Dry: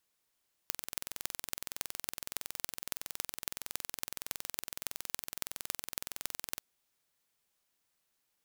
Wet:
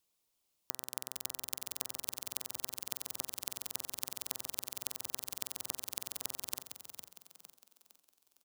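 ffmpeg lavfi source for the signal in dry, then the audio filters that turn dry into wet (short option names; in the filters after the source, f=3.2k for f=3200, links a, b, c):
-f lavfi -i "aevalsrc='0.531*eq(mod(n,2042),0)*(0.5+0.5*eq(mod(n,12252),0))':d=5.9:s=44100"
-filter_complex "[0:a]equalizer=f=1.7k:w=1.9:g=-9.5,bandreject=f=129.4:t=h:w=4,bandreject=f=258.8:t=h:w=4,bandreject=f=388.2:t=h:w=4,bandreject=f=517.6:t=h:w=4,bandreject=f=647:t=h:w=4,bandreject=f=776.4:t=h:w=4,bandreject=f=905.8:t=h:w=4,bandreject=f=1.0352k:t=h:w=4,bandreject=f=1.1646k:t=h:w=4,bandreject=f=1.294k:t=h:w=4,bandreject=f=1.4234k:t=h:w=4,bandreject=f=1.5528k:t=h:w=4,bandreject=f=1.6822k:t=h:w=4,bandreject=f=1.8116k:t=h:w=4,bandreject=f=1.941k:t=h:w=4,asplit=2[a][b];[b]asplit=5[c][d][e][f][g];[c]adelay=458,afreqshift=60,volume=-9dB[h];[d]adelay=916,afreqshift=120,volume=-16.3dB[i];[e]adelay=1374,afreqshift=180,volume=-23.7dB[j];[f]adelay=1832,afreqshift=240,volume=-31dB[k];[g]adelay=2290,afreqshift=300,volume=-38.3dB[l];[h][i][j][k][l]amix=inputs=5:normalize=0[m];[a][m]amix=inputs=2:normalize=0"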